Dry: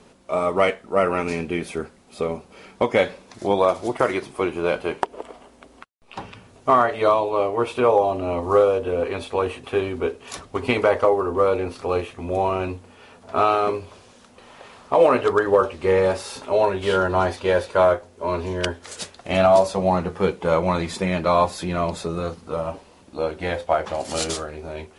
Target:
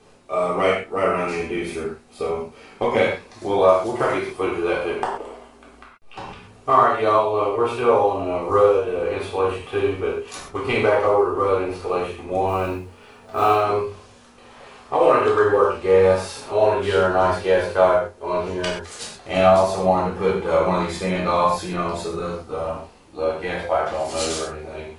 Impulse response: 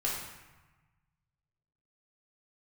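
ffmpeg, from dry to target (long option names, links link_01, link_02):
-filter_complex "[0:a]asplit=3[link_01][link_02][link_03];[link_01]afade=type=out:start_time=12.47:duration=0.02[link_04];[link_02]acrusher=bits=7:mode=log:mix=0:aa=0.000001,afade=type=in:start_time=12.47:duration=0.02,afade=type=out:start_time=13.52:duration=0.02[link_05];[link_03]afade=type=in:start_time=13.52:duration=0.02[link_06];[link_04][link_05][link_06]amix=inputs=3:normalize=0[link_07];[1:a]atrim=start_sample=2205,afade=type=out:start_time=0.19:duration=0.01,atrim=end_sample=8820[link_08];[link_07][link_08]afir=irnorm=-1:irlink=0,volume=-4dB"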